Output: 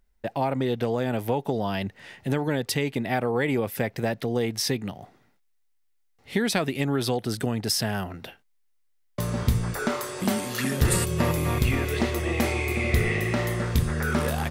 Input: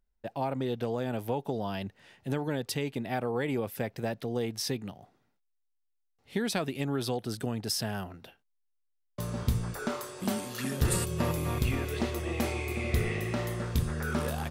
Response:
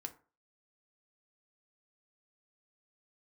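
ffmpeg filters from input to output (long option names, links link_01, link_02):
-filter_complex "[0:a]equalizer=frequency=2000:width_type=o:width=0.4:gain=4.5,asplit=2[link_01][link_02];[link_02]acompressor=threshold=-40dB:ratio=6,volume=-0.5dB[link_03];[link_01][link_03]amix=inputs=2:normalize=0,volume=4dB"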